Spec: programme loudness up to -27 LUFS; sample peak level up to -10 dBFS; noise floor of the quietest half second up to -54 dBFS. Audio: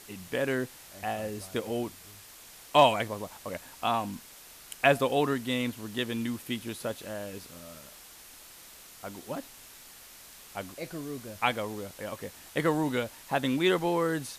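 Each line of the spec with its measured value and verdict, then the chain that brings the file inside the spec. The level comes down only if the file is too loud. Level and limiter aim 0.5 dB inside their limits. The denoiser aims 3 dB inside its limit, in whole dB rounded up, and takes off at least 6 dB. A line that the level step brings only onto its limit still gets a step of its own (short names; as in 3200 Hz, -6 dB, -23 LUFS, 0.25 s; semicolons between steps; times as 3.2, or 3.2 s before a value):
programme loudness -30.5 LUFS: OK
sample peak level -8.5 dBFS: fail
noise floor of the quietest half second -51 dBFS: fail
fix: denoiser 6 dB, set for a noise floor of -51 dBFS; limiter -10.5 dBFS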